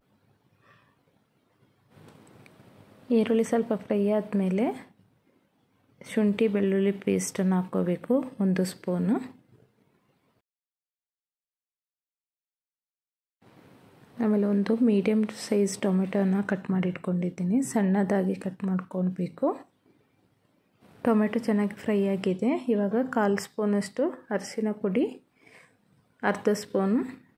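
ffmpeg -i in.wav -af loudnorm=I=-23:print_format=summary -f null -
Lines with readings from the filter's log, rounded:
Input Integrated:    -27.0 LUFS
Input True Peak:      -9.0 dBTP
Input LRA:             4.7 LU
Input Threshold:     -38.6 LUFS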